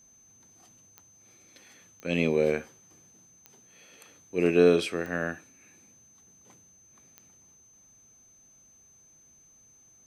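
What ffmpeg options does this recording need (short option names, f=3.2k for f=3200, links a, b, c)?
-af "adeclick=t=4,bandreject=f=6.2k:w=30"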